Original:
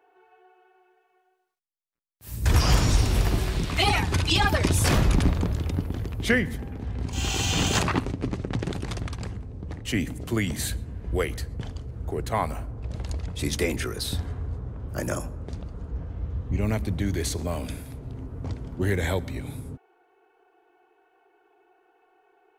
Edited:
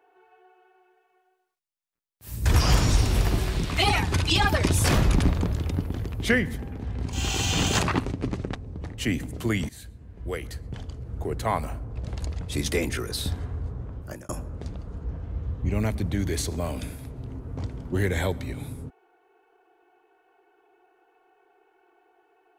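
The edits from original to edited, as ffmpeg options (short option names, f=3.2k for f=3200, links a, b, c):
-filter_complex "[0:a]asplit=4[a][b][c][d];[a]atrim=end=8.552[e];[b]atrim=start=9.418:end=10.56,asetpts=PTS-STARTPTS,afade=t=out:st=1.138:d=0.004:c=hsin:silence=0.11885[f];[c]atrim=start=10.56:end=15.16,asetpts=PTS-STARTPTS,afade=t=in:d=1.44:silence=0.11885,afade=t=out:st=4.2:d=0.4[g];[d]atrim=start=15.16,asetpts=PTS-STARTPTS,afade=t=in:d=0.004:c=hsin[h];[f][g][h]concat=n=3:v=0:a=1[i];[e][i]acrossfade=d=0.004:c1=hsin:c2=hsin"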